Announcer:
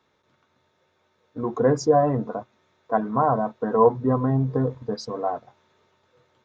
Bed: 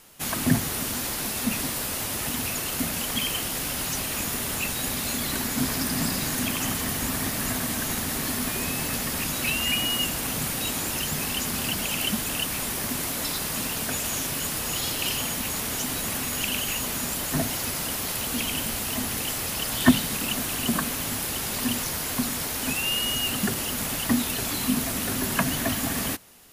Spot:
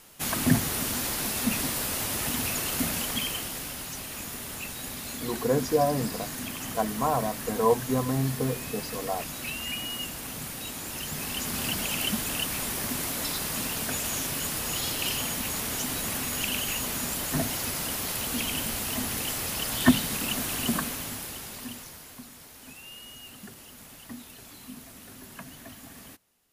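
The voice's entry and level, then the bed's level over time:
3.85 s, -5.5 dB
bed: 2.91 s -0.5 dB
3.86 s -8.5 dB
10.78 s -8.5 dB
11.66 s -2 dB
20.70 s -2 dB
22.26 s -19 dB

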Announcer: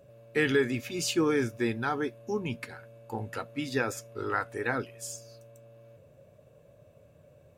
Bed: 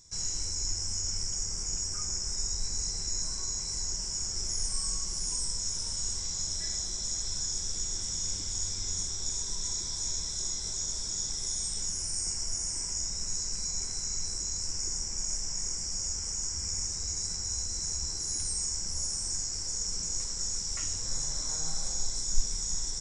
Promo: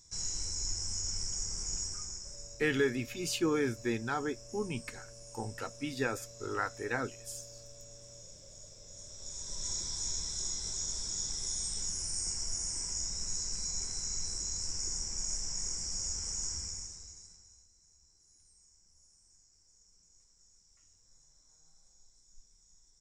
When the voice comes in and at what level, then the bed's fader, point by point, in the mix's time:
2.25 s, -4.0 dB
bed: 1.82 s -3.5 dB
2.66 s -19.5 dB
8.86 s -19.5 dB
9.70 s -3 dB
16.53 s -3 dB
17.74 s -32 dB

